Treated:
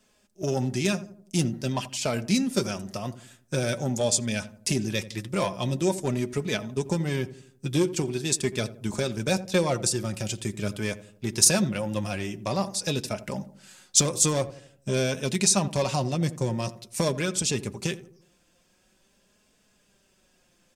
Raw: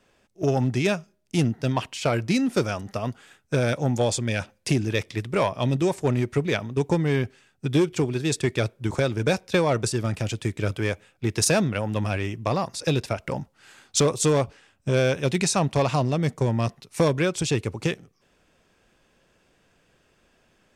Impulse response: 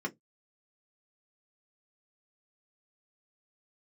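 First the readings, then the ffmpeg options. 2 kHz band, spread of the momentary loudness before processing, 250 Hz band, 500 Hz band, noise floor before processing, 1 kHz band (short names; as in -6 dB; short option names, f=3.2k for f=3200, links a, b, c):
-3.5 dB, 7 LU, -2.5 dB, -4.0 dB, -65 dBFS, -4.5 dB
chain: -filter_complex "[0:a]bass=f=250:g=0,treble=f=4k:g=11,flanger=delay=4.6:depth=1.2:regen=38:speed=0.46:shape=triangular,asplit=2[a][b];[b]adelay=84,lowpass=f=940:p=1,volume=-14dB,asplit=2[c][d];[d]adelay=84,lowpass=f=940:p=1,volume=0.5,asplit=2[e][f];[f]adelay=84,lowpass=f=940:p=1,volume=0.5,asplit=2[g][h];[h]adelay=84,lowpass=f=940:p=1,volume=0.5,asplit=2[i][j];[j]adelay=84,lowpass=f=940:p=1,volume=0.5[k];[a][c][e][g][i][k]amix=inputs=6:normalize=0,asplit=2[l][m];[1:a]atrim=start_sample=2205[n];[m][n]afir=irnorm=-1:irlink=0,volume=-16.5dB[o];[l][o]amix=inputs=2:normalize=0"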